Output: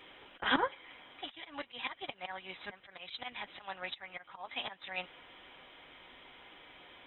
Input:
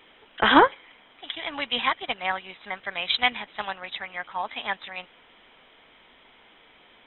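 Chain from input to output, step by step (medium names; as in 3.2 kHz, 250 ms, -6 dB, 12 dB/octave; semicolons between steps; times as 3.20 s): slow attack 378 ms; comb of notches 220 Hz; trim +1 dB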